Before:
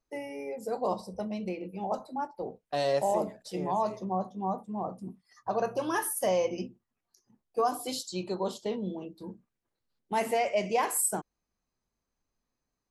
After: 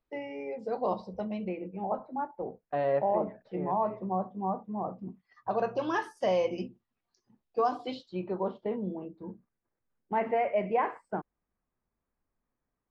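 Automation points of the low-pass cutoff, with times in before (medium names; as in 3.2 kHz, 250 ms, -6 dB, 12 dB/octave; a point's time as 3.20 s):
low-pass 24 dB/octave
1.25 s 3.9 kHz
1.68 s 2.1 kHz
4.66 s 2.1 kHz
5.84 s 4.6 kHz
7.68 s 4.6 kHz
8.25 s 2.1 kHz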